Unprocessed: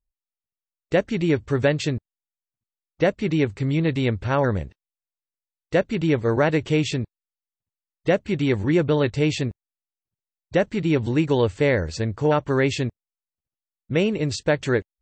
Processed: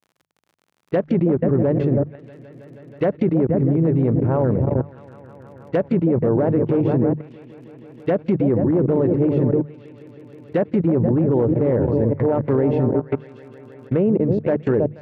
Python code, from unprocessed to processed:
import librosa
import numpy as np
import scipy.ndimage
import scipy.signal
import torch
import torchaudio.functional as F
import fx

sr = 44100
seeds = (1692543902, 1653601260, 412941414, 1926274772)

p1 = fx.echo_opening(x, sr, ms=160, hz=200, octaves=2, feedback_pct=70, wet_db=-6)
p2 = (np.mod(10.0 ** (11.0 / 20.0) * p1 + 1.0, 2.0) - 1.0) / 10.0 ** (11.0 / 20.0)
p3 = p1 + (p2 * 10.0 ** (-8.5 / 20.0))
p4 = fx.level_steps(p3, sr, step_db=24)
p5 = fx.env_lowpass(p4, sr, base_hz=1500.0, full_db=-25.5)
p6 = fx.dmg_crackle(p5, sr, seeds[0], per_s=53.0, level_db=-45.0)
p7 = fx.high_shelf(p6, sr, hz=2000.0, db=-11.0)
p8 = fx.env_lowpass_down(p7, sr, base_hz=840.0, full_db=-21.5)
p9 = scipy.signal.sosfilt(scipy.signal.butter(2, 110.0, 'highpass', fs=sr, output='sos'), p8)
p10 = fx.hum_notches(p9, sr, base_hz=50, count=3)
y = p10 * 10.0 ** (8.5 / 20.0)